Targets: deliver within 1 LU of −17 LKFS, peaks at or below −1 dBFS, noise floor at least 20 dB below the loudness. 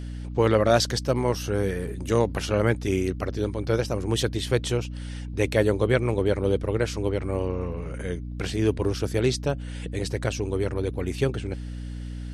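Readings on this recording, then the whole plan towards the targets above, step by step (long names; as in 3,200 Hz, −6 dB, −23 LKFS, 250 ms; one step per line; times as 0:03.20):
mains hum 60 Hz; hum harmonics up to 300 Hz; level of the hum −31 dBFS; integrated loudness −26.0 LKFS; sample peak −7.0 dBFS; target loudness −17.0 LKFS
→ mains-hum notches 60/120/180/240/300 Hz
level +9 dB
brickwall limiter −1 dBFS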